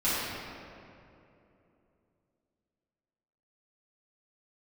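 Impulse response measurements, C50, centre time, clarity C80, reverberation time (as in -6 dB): -4.0 dB, 0.158 s, -1.5 dB, 2.8 s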